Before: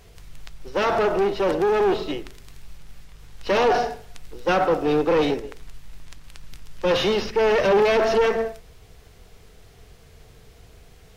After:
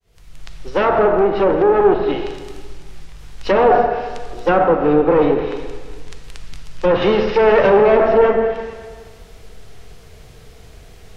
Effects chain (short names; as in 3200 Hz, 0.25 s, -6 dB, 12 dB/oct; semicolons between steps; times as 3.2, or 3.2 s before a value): opening faded in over 0.58 s; 7.02–7.7 high shelf 2100 Hz +10.5 dB; reverb RT60 1.6 s, pre-delay 4 ms, DRR 6 dB; treble ducked by the level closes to 1500 Hz, closed at -16.5 dBFS; gain +6 dB